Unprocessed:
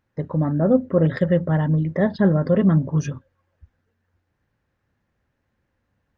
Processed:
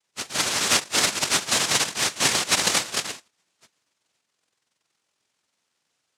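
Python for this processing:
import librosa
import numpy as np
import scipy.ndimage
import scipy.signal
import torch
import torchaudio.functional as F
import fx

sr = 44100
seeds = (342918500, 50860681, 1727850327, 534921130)

y = fx.octave_mirror(x, sr, pivot_hz=620.0)
y = fx.noise_vocoder(y, sr, seeds[0], bands=1)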